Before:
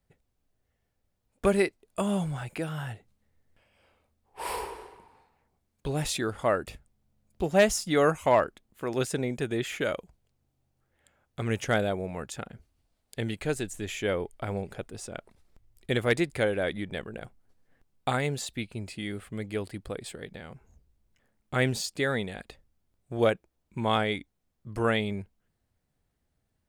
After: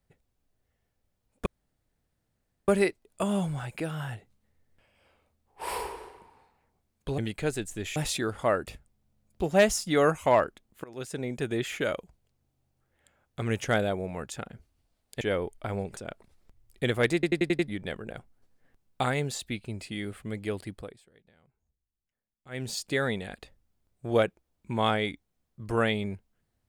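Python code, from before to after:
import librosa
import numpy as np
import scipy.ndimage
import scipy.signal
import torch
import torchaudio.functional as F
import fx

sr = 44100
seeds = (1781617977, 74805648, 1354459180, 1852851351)

y = fx.edit(x, sr, fx.insert_room_tone(at_s=1.46, length_s=1.22),
    fx.fade_in_from(start_s=8.84, length_s=0.62, floor_db=-21.0),
    fx.move(start_s=13.21, length_s=0.78, to_s=5.96),
    fx.cut(start_s=14.75, length_s=0.29),
    fx.stutter_over(start_s=16.21, slice_s=0.09, count=6),
    fx.fade_down_up(start_s=19.76, length_s=2.12, db=-20.5, fade_s=0.31), tone=tone)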